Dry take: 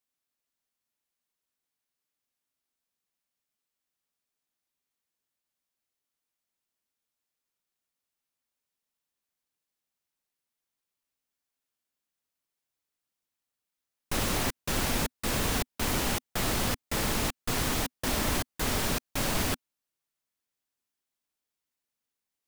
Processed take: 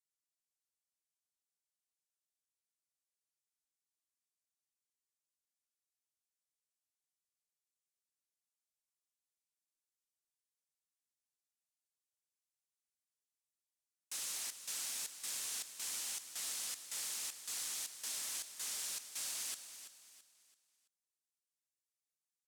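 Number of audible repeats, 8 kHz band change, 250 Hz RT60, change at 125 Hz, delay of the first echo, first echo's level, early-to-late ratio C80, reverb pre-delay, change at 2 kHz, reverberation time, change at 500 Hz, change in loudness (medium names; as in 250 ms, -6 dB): 3, -4.5 dB, no reverb, under -40 dB, 333 ms, -11.0 dB, no reverb, no reverb, -17.0 dB, no reverb, -29.5 dB, -10.5 dB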